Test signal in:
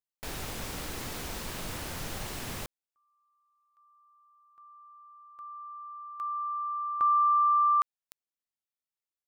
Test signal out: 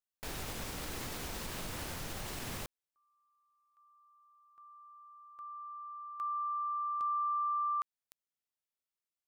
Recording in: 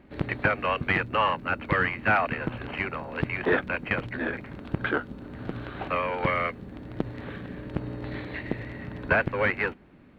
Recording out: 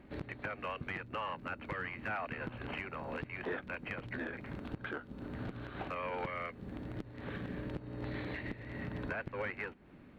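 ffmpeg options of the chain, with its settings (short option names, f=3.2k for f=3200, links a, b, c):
-af "acompressor=threshold=-29dB:ratio=6:attack=0.12:release=283:knee=1:detection=rms,volume=-2.5dB"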